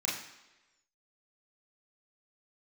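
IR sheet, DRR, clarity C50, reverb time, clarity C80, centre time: −5.5 dB, 5.0 dB, 1.1 s, 8.0 dB, 46 ms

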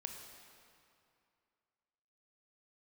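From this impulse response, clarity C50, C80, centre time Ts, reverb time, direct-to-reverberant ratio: 4.0 dB, 5.0 dB, 64 ms, 2.5 s, 3.0 dB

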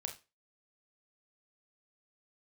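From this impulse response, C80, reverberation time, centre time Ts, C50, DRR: 19.0 dB, 0.30 s, 14 ms, 12.0 dB, 3.0 dB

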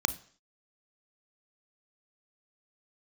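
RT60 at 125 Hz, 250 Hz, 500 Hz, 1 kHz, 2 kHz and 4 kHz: 0.45, 0.50, 0.50, 0.50, 0.55, 0.55 seconds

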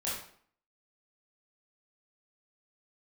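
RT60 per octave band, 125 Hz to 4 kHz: 0.50, 0.60, 0.55, 0.55, 0.50, 0.45 seconds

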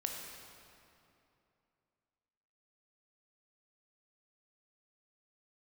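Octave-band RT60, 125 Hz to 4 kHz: 3.0, 3.0, 2.8, 2.7, 2.3, 1.9 seconds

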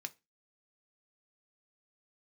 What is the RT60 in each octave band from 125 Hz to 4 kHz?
0.25, 0.30, 0.25, 0.25, 0.25, 0.25 seconds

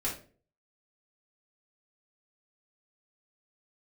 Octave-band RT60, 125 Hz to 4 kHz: 0.55, 0.50, 0.50, 0.35, 0.35, 0.30 seconds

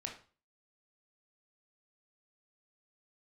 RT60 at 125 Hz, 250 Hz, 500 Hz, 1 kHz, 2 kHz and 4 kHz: 0.45, 0.40, 0.40, 0.40, 0.35, 0.35 seconds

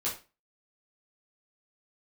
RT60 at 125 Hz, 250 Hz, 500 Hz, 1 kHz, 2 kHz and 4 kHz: 0.30, 0.35, 0.30, 0.30, 0.30, 0.30 seconds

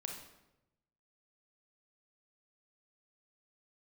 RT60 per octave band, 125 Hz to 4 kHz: 1.4, 1.1, 1.0, 0.85, 0.75, 0.70 seconds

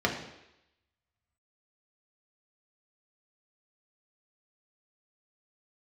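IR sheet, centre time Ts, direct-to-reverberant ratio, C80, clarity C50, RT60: 26 ms, −1.0 dB, 9.5 dB, 7.0 dB, 0.85 s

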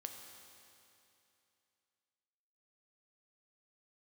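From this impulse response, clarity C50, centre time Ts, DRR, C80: 5.0 dB, 65 ms, 3.5 dB, 5.5 dB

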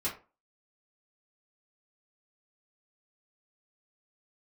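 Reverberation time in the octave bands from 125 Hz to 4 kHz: 0.30, 0.35, 0.35, 0.35, 0.25, 0.20 seconds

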